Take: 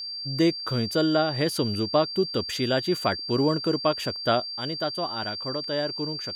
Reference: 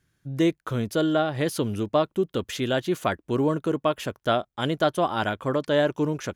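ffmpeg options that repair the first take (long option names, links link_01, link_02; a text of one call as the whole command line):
ffmpeg -i in.wav -af "bandreject=frequency=4700:width=30,asetnsamples=nb_out_samples=441:pad=0,asendcmd='4.4 volume volume 7dB',volume=0dB" out.wav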